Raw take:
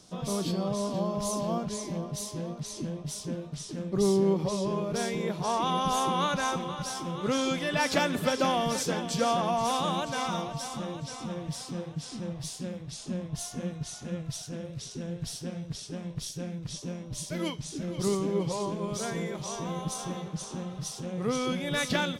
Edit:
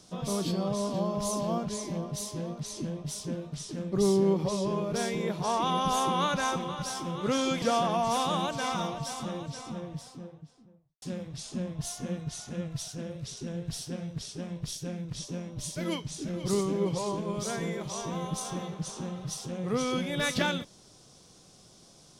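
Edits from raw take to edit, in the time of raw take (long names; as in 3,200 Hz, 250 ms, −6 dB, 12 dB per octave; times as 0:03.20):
0:07.62–0:09.16: remove
0:10.78–0:12.56: fade out and dull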